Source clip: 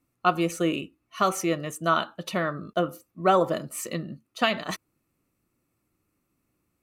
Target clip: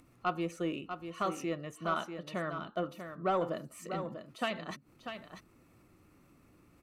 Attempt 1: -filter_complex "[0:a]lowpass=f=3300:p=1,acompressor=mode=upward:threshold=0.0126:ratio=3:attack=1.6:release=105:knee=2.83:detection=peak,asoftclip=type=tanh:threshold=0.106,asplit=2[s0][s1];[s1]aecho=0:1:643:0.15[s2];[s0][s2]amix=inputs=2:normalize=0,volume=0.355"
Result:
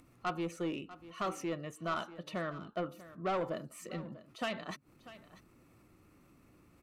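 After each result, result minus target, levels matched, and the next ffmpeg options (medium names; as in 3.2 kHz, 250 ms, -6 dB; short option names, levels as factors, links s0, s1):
saturation: distortion +10 dB; echo-to-direct -8 dB
-filter_complex "[0:a]lowpass=f=3300:p=1,acompressor=mode=upward:threshold=0.0126:ratio=3:attack=1.6:release=105:knee=2.83:detection=peak,asoftclip=type=tanh:threshold=0.266,asplit=2[s0][s1];[s1]aecho=0:1:643:0.15[s2];[s0][s2]amix=inputs=2:normalize=0,volume=0.355"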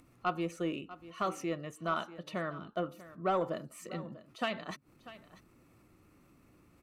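echo-to-direct -8 dB
-filter_complex "[0:a]lowpass=f=3300:p=1,acompressor=mode=upward:threshold=0.0126:ratio=3:attack=1.6:release=105:knee=2.83:detection=peak,asoftclip=type=tanh:threshold=0.266,asplit=2[s0][s1];[s1]aecho=0:1:643:0.376[s2];[s0][s2]amix=inputs=2:normalize=0,volume=0.355"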